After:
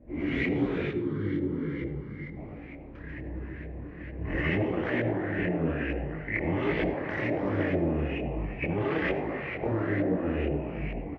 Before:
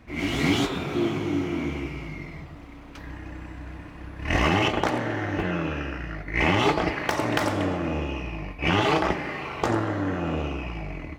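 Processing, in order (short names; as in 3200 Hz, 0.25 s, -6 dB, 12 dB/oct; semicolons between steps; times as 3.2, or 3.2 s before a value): band shelf 980 Hz -13.5 dB 1.3 oct; limiter -18 dBFS, peak gain reduction 8 dB; frequency-shifting echo 0.139 s, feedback 56%, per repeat +75 Hz, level -9.5 dB; LFO low-pass saw up 2.2 Hz 620–2200 Hz; 0.89–2.37 fixed phaser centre 2500 Hz, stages 6; reverb RT60 0.40 s, pre-delay 67 ms, DRR 13.5 dB; detuned doubles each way 41 cents; gain +2 dB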